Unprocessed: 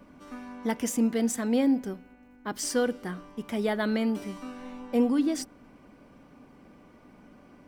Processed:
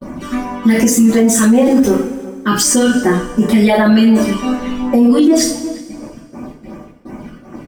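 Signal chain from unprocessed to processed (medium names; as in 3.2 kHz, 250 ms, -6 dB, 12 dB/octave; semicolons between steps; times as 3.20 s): 1.08–1.95 s: jump at every zero crossing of -39.5 dBFS; reverb removal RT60 0.82 s; phase shifter stages 12, 2.7 Hz, lowest notch 650–4400 Hz; gate -55 dBFS, range -39 dB; speakerphone echo 360 ms, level -20 dB; two-slope reverb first 0.38 s, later 1.8 s, from -20 dB, DRR -6.5 dB; loudness maximiser +21.5 dB; trim -2.5 dB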